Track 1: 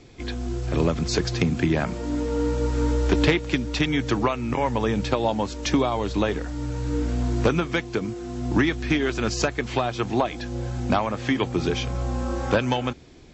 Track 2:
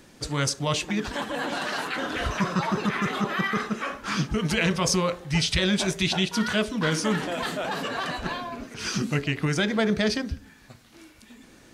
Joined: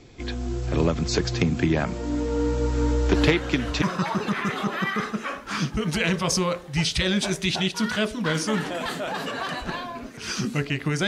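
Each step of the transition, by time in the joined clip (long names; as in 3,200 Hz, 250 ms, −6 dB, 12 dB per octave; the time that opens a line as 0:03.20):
track 1
0:03.14: mix in track 2 from 0:01.71 0.68 s −7 dB
0:03.82: continue with track 2 from 0:02.39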